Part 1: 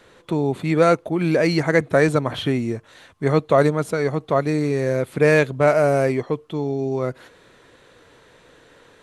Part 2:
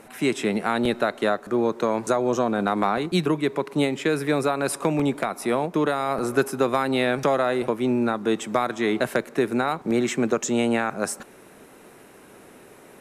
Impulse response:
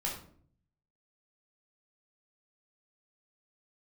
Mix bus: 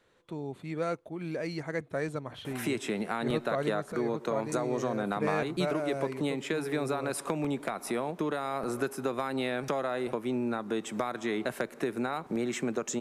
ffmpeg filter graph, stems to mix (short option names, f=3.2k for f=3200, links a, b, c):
-filter_complex "[0:a]volume=-16.5dB[a];[1:a]acompressor=threshold=-35dB:ratio=2.5,adelay=2450,volume=1.5dB[b];[a][b]amix=inputs=2:normalize=0"